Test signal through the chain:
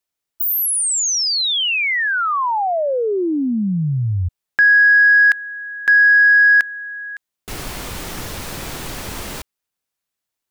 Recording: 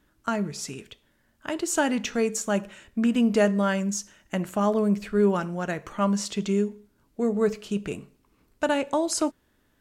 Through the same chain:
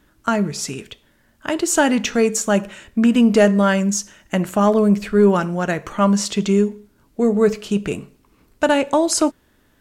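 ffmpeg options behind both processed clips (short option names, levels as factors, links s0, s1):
-af "acontrast=90,volume=1.12"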